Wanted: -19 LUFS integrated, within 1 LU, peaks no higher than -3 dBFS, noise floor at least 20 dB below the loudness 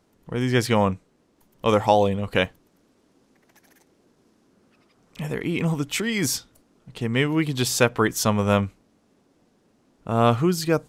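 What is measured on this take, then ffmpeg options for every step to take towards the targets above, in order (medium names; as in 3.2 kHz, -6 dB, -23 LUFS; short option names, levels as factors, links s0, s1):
loudness -23.0 LUFS; peak level -2.5 dBFS; loudness target -19.0 LUFS
-> -af "volume=1.58,alimiter=limit=0.708:level=0:latency=1"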